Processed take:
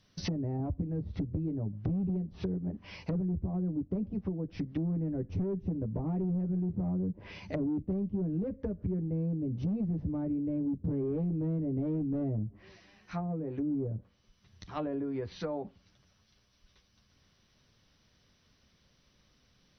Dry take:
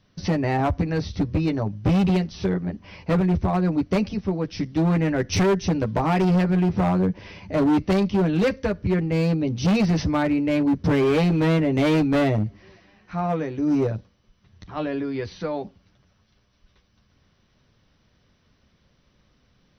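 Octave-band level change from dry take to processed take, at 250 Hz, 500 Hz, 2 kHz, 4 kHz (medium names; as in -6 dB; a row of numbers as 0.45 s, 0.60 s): -11.0 dB, -14.5 dB, -22.5 dB, under -15 dB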